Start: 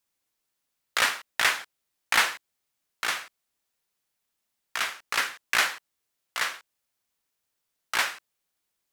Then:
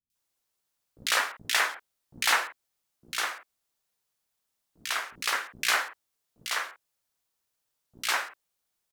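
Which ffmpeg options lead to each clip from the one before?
-filter_complex "[0:a]acrossover=split=270|2200[a][b][c];[c]adelay=100[d];[b]adelay=150[e];[a][e][d]amix=inputs=3:normalize=0"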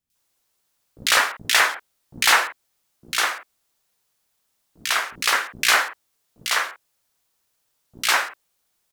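-af "asoftclip=type=tanh:threshold=-14dB,volume=9dB"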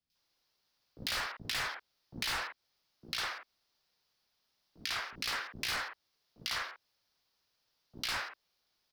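-filter_complex "[0:a]highshelf=f=6.2k:t=q:w=3:g=-8,asoftclip=type=hard:threshold=-18dB,acrossover=split=130[a][b];[b]acompressor=threshold=-32dB:ratio=3[c];[a][c]amix=inputs=2:normalize=0,volume=-5dB"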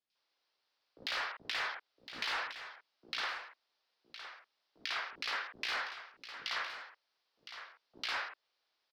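-filter_complex "[0:a]acrossover=split=320 4900:gain=0.126 1 0.112[a][b][c];[a][b][c]amix=inputs=3:normalize=0,aecho=1:1:1012:0.282"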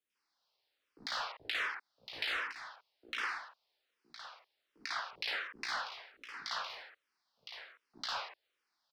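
-filter_complex "[0:a]asplit=2[a][b];[b]afreqshift=-1.3[c];[a][c]amix=inputs=2:normalize=1,volume=2.5dB"

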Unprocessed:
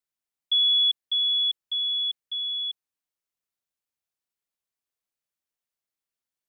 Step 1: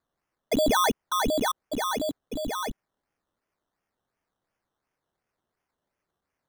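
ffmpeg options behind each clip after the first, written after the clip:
-af "bandreject=f=3.3k:w=8.3,acrusher=samples=15:mix=1:aa=0.000001:lfo=1:lforange=9:lforate=2.8,volume=6dB"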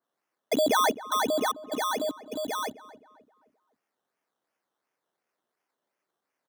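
-filter_complex "[0:a]highpass=270,asplit=2[a][b];[b]adelay=262,lowpass=f=1.7k:p=1,volume=-16dB,asplit=2[c][d];[d]adelay=262,lowpass=f=1.7k:p=1,volume=0.42,asplit=2[e][f];[f]adelay=262,lowpass=f=1.7k:p=1,volume=0.42,asplit=2[g][h];[h]adelay=262,lowpass=f=1.7k:p=1,volume=0.42[i];[a][c][e][g][i]amix=inputs=5:normalize=0,adynamicequalizer=threshold=0.0126:dfrequency=2200:dqfactor=0.7:tfrequency=2200:tqfactor=0.7:attack=5:release=100:ratio=0.375:range=2:mode=cutabove:tftype=highshelf"

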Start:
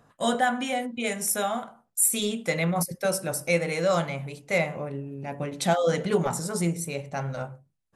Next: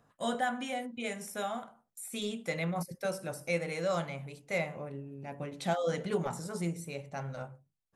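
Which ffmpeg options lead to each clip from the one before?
-filter_complex "[0:a]acrossover=split=4300[a][b];[b]acompressor=threshold=-36dB:ratio=4:attack=1:release=60[c];[a][c]amix=inputs=2:normalize=0,volume=-8dB"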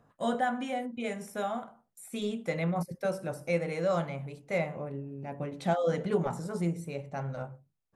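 -af "highshelf=f=2k:g=-9.5,volume=4dB"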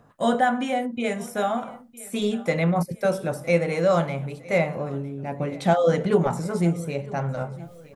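-af "areverse,acompressor=mode=upward:threshold=-41dB:ratio=2.5,areverse,aecho=1:1:959|1918|2877:0.0891|0.0374|0.0157,volume=8.5dB"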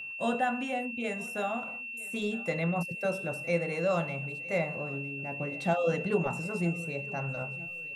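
-af "aeval=exprs='val(0)+0.0355*sin(2*PI*2700*n/s)':c=same,acrusher=bits=10:mix=0:aa=0.000001,volume=-8.5dB"

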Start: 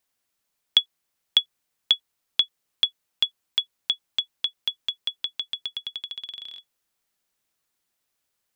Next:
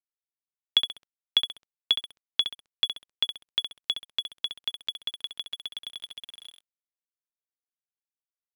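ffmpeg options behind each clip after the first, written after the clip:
-filter_complex "[0:a]bass=f=250:g=-2,treble=f=4k:g=-9,asplit=2[a][b];[b]adelay=66,lowpass=f=3.7k:p=1,volume=-6dB,asplit=2[c][d];[d]adelay=66,lowpass=f=3.7k:p=1,volume=0.5,asplit=2[e][f];[f]adelay=66,lowpass=f=3.7k:p=1,volume=0.5,asplit=2[g][h];[h]adelay=66,lowpass=f=3.7k:p=1,volume=0.5,asplit=2[i][j];[j]adelay=66,lowpass=f=3.7k:p=1,volume=0.5,asplit=2[k][l];[l]adelay=66,lowpass=f=3.7k:p=1,volume=0.5[m];[a][c][e][g][i][k][m]amix=inputs=7:normalize=0,aeval=exprs='sgn(val(0))*max(abs(val(0))-0.00668,0)':c=same"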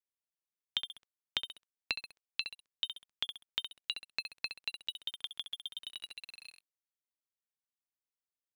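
-af "equalizer=f=470:w=3.5:g=-11.5,acompressor=threshold=-26dB:ratio=6,aeval=exprs='val(0)*sin(2*PI*450*n/s+450*0.75/0.46*sin(2*PI*0.46*n/s))':c=same,volume=-2.5dB"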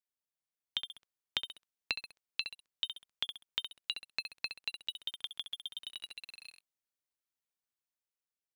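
-af "dynaudnorm=f=140:g=11:m=3.5dB,volume=-3.5dB"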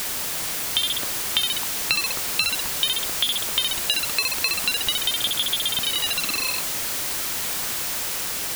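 -af "aeval=exprs='val(0)+0.5*0.0501*sgn(val(0))':c=same,volume=8.5dB"

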